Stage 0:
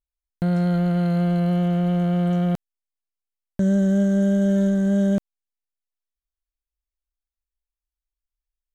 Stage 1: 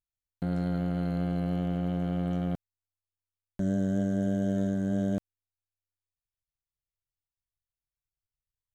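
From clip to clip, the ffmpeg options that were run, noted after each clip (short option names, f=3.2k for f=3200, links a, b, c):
-af "tremolo=f=94:d=0.824,volume=-5.5dB"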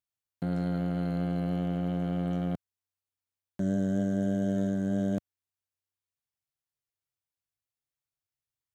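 -af "highpass=94"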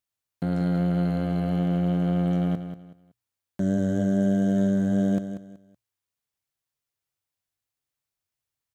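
-filter_complex "[0:a]bandreject=f=60:t=h:w=6,bandreject=f=120:t=h:w=6,asplit=2[a][b];[b]aecho=0:1:188|376|564:0.316|0.0885|0.0248[c];[a][c]amix=inputs=2:normalize=0,volume=4.5dB"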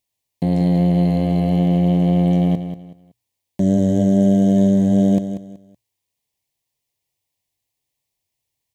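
-af "asuperstop=centerf=1400:order=4:qfactor=1.7,volume=8dB"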